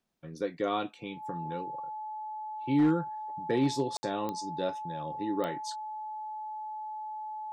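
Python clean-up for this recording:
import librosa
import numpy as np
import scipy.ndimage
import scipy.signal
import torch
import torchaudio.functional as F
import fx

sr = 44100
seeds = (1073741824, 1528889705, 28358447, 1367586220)

y = fx.fix_declip(x, sr, threshold_db=-18.5)
y = fx.fix_declick_ar(y, sr, threshold=10.0)
y = fx.notch(y, sr, hz=860.0, q=30.0)
y = fx.fix_ambience(y, sr, seeds[0], print_start_s=0.0, print_end_s=0.5, start_s=3.97, end_s=4.03)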